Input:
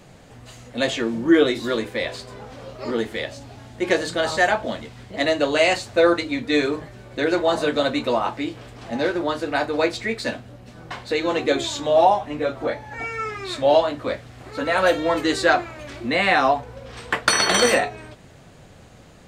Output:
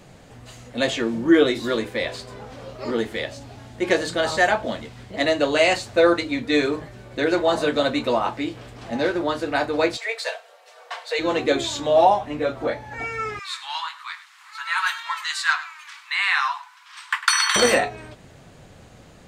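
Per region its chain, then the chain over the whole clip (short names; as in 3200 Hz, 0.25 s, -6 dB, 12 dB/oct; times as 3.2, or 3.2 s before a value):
9.97–11.19 steep high-pass 500 Hz 48 dB/oct + comb 4.4 ms, depth 54%
13.39–17.56 steep high-pass 930 Hz 72 dB/oct + echo 0.101 s -15 dB
whole clip: dry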